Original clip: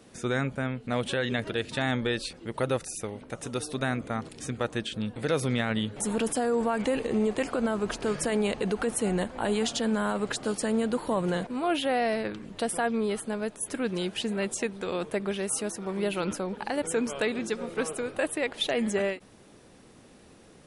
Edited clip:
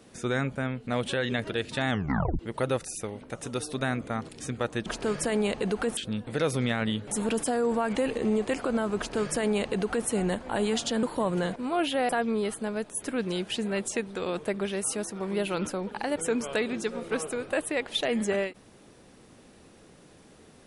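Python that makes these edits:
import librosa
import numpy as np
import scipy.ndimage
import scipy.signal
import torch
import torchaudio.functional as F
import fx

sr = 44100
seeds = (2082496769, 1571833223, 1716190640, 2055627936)

y = fx.edit(x, sr, fx.tape_stop(start_s=1.9, length_s=0.49),
    fx.duplicate(start_s=7.86, length_s=1.11, to_s=4.86),
    fx.cut(start_s=9.92, length_s=1.02),
    fx.cut(start_s=12.0, length_s=0.75), tone=tone)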